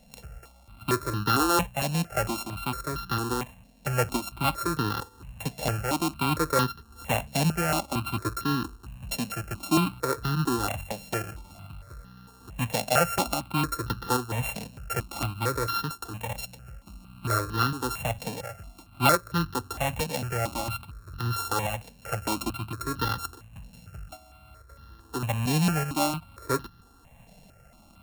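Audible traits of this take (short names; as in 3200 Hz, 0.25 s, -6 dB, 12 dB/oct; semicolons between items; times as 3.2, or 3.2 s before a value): a buzz of ramps at a fixed pitch in blocks of 32 samples; tremolo saw up 1.2 Hz, depth 40%; notches that jump at a steady rate 4.4 Hz 350–2300 Hz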